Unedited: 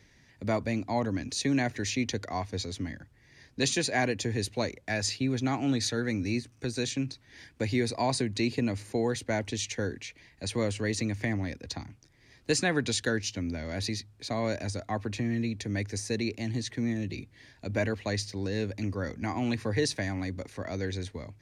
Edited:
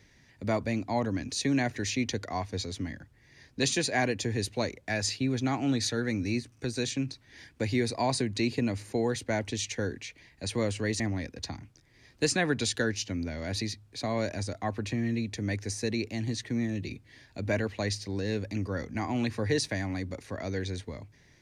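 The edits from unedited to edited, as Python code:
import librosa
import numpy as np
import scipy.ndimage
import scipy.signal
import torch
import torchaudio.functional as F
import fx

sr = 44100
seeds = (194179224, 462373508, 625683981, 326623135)

y = fx.edit(x, sr, fx.cut(start_s=11.0, length_s=0.27), tone=tone)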